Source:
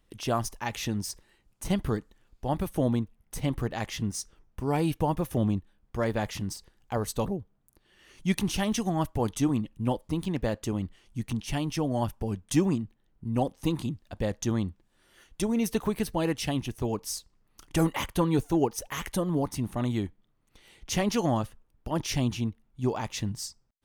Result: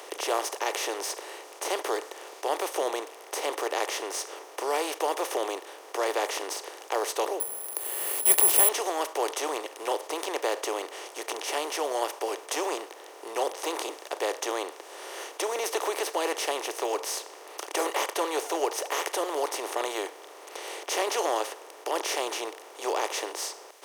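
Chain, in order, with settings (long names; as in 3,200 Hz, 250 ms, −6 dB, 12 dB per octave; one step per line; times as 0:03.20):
compressor on every frequency bin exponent 0.4
0:07.40–0:08.69: bad sample-rate conversion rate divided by 4×, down filtered, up zero stuff
Butterworth high-pass 390 Hz 48 dB per octave
level −3 dB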